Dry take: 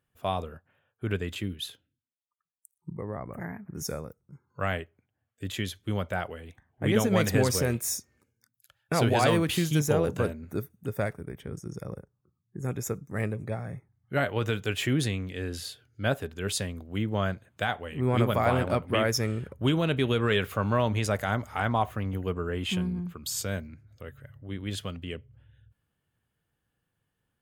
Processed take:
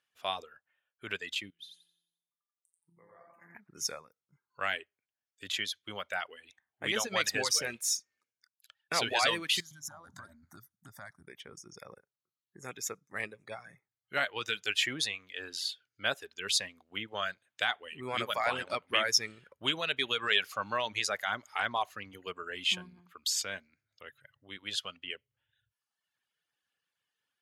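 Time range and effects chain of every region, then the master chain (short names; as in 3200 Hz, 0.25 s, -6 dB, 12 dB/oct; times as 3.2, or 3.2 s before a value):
1.5–3.55 resonator 170 Hz, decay 1.1 s, mix 90% + feedback echo 88 ms, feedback 47%, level -3 dB
9.6–11.28 low shelf 160 Hz +10 dB + compressor 10:1, threshold -28 dBFS + fixed phaser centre 1100 Hz, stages 4
whole clip: weighting filter ITU-R 468; reverb removal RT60 1.1 s; bell 8400 Hz -10.5 dB 0.9 oct; gain -3 dB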